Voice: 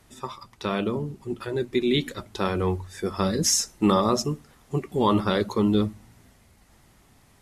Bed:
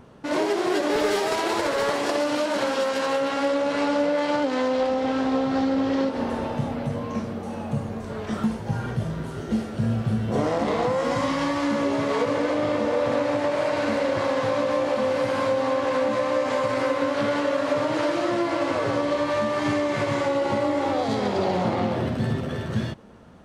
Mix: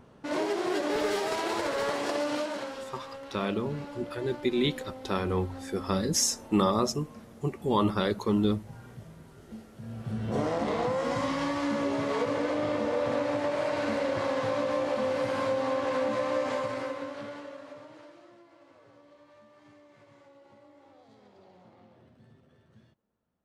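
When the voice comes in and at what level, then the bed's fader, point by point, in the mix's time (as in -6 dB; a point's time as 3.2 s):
2.70 s, -4.0 dB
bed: 2.37 s -6 dB
2.96 s -19.5 dB
9.8 s -19.5 dB
10.27 s -5.5 dB
16.47 s -5.5 dB
18.47 s -33 dB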